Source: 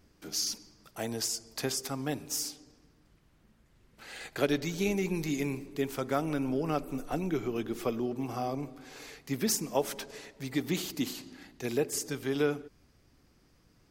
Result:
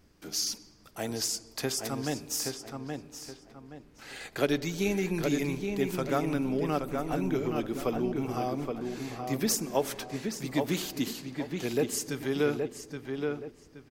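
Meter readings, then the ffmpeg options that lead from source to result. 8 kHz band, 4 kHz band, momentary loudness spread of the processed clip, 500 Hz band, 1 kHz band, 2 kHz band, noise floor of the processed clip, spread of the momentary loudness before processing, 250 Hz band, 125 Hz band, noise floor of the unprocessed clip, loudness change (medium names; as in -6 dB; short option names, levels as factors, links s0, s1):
+1.5 dB, +1.5 dB, 12 LU, +2.5 dB, +2.5 dB, +2.0 dB, -57 dBFS, 13 LU, +2.5 dB, +2.5 dB, -65 dBFS, +1.5 dB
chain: -filter_complex "[0:a]asplit=2[s0][s1];[s1]adelay=823,lowpass=f=2900:p=1,volume=0.596,asplit=2[s2][s3];[s3]adelay=823,lowpass=f=2900:p=1,volume=0.33,asplit=2[s4][s5];[s5]adelay=823,lowpass=f=2900:p=1,volume=0.33,asplit=2[s6][s7];[s7]adelay=823,lowpass=f=2900:p=1,volume=0.33[s8];[s0][s2][s4][s6][s8]amix=inputs=5:normalize=0,volume=1.12"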